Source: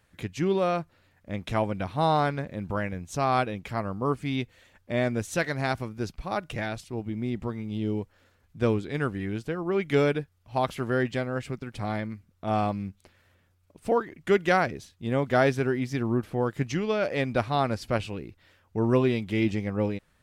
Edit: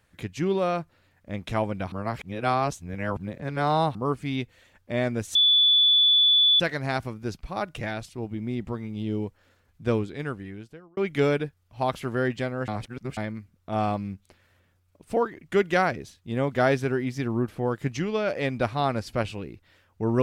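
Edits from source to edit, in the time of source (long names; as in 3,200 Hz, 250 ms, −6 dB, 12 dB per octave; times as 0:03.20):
0:01.92–0:03.95: reverse
0:05.35: insert tone 3,460 Hz −15.5 dBFS 1.25 s
0:08.65–0:09.72: fade out
0:11.43–0:11.92: reverse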